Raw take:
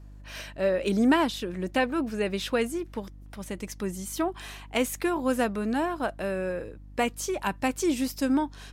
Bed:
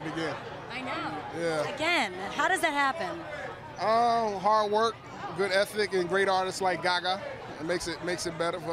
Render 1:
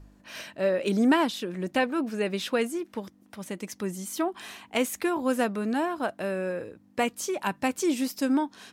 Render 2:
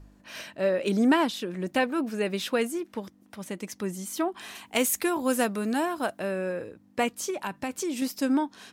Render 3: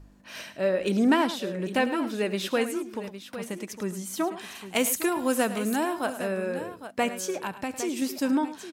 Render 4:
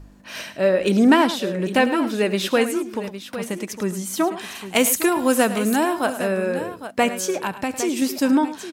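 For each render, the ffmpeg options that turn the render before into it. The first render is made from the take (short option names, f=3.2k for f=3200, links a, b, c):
-af "bandreject=f=50:t=h:w=4,bandreject=f=100:t=h:w=4,bandreject=f=150:t=h:w=4"
-filter_complex "[0:a]asettb=1/sr,asplit=3[a][b][c];[a]atrim=end=1.684[d];[b]atrim=start=1.68:end=2.8,asetpts=PTS-STARTPTS,afade=t=in:d=0.004:c=qsin,afade=t=out:st=1.116:d=0.004:c=qsin,highshelf=f=12k:g=7[e];[c]atrim=start=2.796[f];[d][e]acrossfade=d=0.004:c1=hsin:c2=qsin[g];[g][f]acrossfade=d=0.004:c1=qsin:c2=hsin,asettb=1/sr,asplit=3[h][i][j];[h]atrim=end=4.554[k];[i]atrim=start=4.55:end=6.19,asetpts=PTS-STARTPTS,afade=t=in:d=0.004:c=qsin,afade=t=out:st=1.636:d=0.004:c=qsin,highshelf=f=5.2k:g=10.5[l];[j]atrim=start=6.186[m];[k][l]acrossfade=d=0.004:c1=hsin:c2=qsin[n];[n][m]acrossfade=d=0.004:c1=qsin:c2=hsin,asettb=1/sr,asplit=3[o][p][q];[o]atrim=end=7.304[r];[p]atrim=start=7.3:end=8.02,asetpts=PTS-STARTPTS,afade=t=in:d=0.004:c=qsin,afade=t=out:st=0.716:d=0.004:c=qsin,acompressor=threshold=-28dB:ratio=3:attack=3.2:release=140:knee=1:detection=peak[s];[q]atrim=start=8.016[t];[r][s]acrossfade=d=0.004:c1=hsin:c2=qsin[u];[u][t]acrossfade=d=0.004:c1=qsin:c2=hsin"
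-af "aecho=1:1:72|105|808:0.106|0.211|0.251"
-af "volume=7dB"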